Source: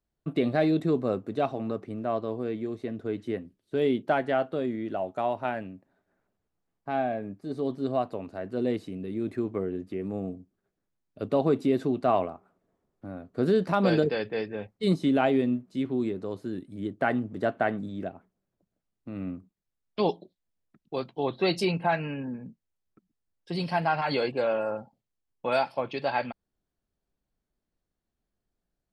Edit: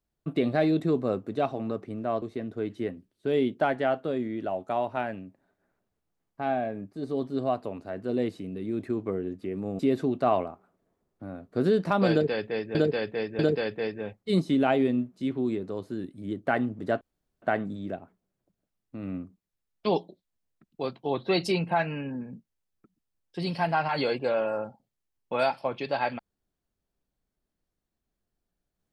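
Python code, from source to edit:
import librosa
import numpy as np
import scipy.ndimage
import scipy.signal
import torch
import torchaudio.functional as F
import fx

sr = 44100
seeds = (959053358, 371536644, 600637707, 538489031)

y = fx.edit(x, sr, fx.cut(start_s=2.22, length_s=0.48),
    fx.cut(start_s=10.27, length_s=1.34),
    fx.repeat(start_s=13.93, length_s=0.64, count=3),
    fx.insert_room_tone(at_s=17.55, length_s=0.41), tone=tone)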